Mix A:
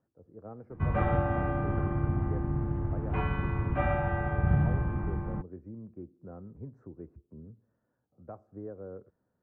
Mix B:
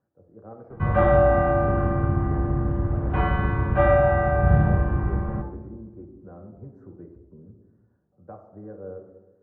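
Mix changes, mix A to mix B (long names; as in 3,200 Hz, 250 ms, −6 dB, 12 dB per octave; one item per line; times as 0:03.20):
background +4.5 dB
reverb: on, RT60 1.2 s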